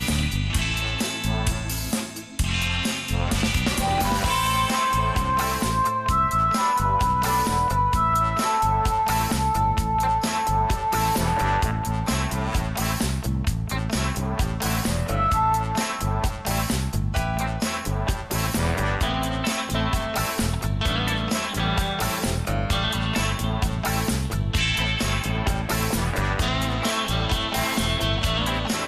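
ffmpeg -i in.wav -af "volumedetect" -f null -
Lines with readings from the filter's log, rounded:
mean_volume: -23.3 dB
max_volume: -12.1 dB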